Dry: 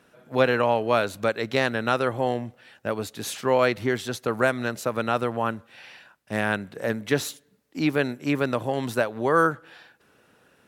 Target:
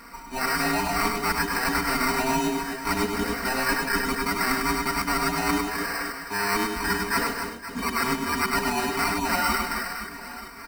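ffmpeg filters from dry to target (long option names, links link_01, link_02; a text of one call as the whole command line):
ffmpeg -i in.wav -af "afftfilt=real='real(if(between(b,1,1008),(2*floor((b-1)/24)+1)*24-b,b),0)':imag='imag(if(between(b,1,1008),(2*floor((b-1)/24)+1)*24-b,b),0)*if(between(b,1,1008),-1,1)':win_size=2048:overlap=0.75,afftfilt=real='re*lt(hypot(re,im),0.316)':imag='im*lt(hypot(re,im),0.316)':win_size=1024:overlap=0.75,firequalizer=gain_entry='entry(120,0);entry(1800,8);entry(6500,-26)':delay=0.05:min_phase=1,areverse,acompressor=threshold=-34dB:ratio=6,areverse,acrusher=samples=13:mix=1:aa=0.000001,aecho=1:1:4.3:0.93,aecho=1:1:100|260|516|925.6|1581:0.631|0.398|0.251|0.158|0.1,volume=8dB" out.wav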